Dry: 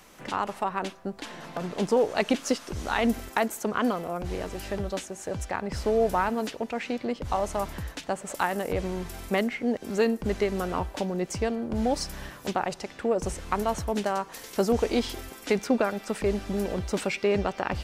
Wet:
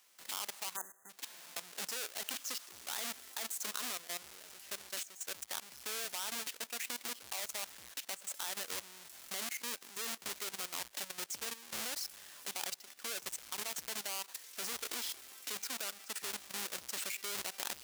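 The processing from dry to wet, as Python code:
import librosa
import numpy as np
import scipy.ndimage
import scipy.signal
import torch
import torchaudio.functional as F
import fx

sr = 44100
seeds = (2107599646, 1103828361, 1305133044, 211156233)

y = fx.halfwave_hold(x, sr)
y = fx.high_shelf(y, sr, hz=9800.0, db=-8.0)
y = fx.spec_erase(y, sr, start_s=0.76, length_s=0.34, low_hz=2000.0, high_hz=6100.0)
y = np.diff(y, prepend=0.0)
y = fx.level_steps(y, sr, step_db=14)
y = y * librosa.db_to_amplitude(2.5)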